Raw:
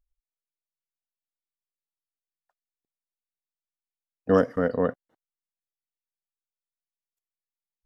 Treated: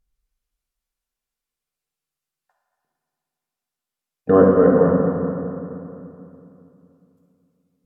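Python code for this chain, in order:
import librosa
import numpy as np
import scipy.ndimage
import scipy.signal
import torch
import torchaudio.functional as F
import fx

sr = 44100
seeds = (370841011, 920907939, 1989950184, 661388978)

y = fx.env_lowpass_down(x, sr, base_hz=1100.0, full_db=-25.5)
y = fx.rev_fdn(y, sr, rt60_s=2.8, lf_ratio=1.2, hf_ratio=0.7, size_ms=39.0, drr_db=-4.0)
y = F.gain(torch.from_numpy(y), 5.0).numpy()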